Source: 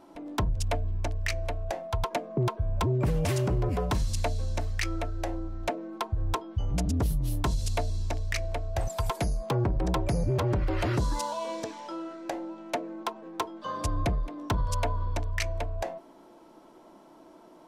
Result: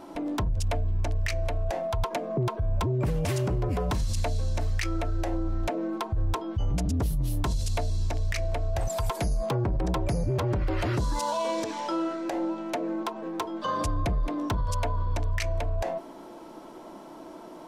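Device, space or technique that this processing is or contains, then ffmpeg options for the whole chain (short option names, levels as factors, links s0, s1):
stacked limiters: -af "alimiter=level_in=1.06:limit=0.0631:level=0:latency=1:release=145,volume=0.944,alimiter=level_in=1.88:limit=0.0631:level=0:latency=1:release=58,volume=0.531,volume=2.82"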